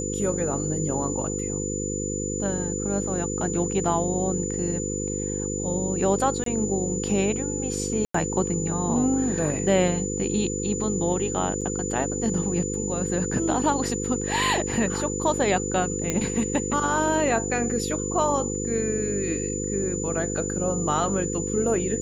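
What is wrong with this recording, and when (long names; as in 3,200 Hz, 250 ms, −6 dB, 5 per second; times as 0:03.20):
mains buzz 50 Hz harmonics 10 −30 dBFS
whistle 7,000 Hz −31 dBFS
0:06.44–0:06.46: drop-out 23 ms
0:08.05–0:08.14: drop-out 94 ms
0:11.61–0:11.62: drop-out 5.7 ms
0:16.10: click −10 dBFS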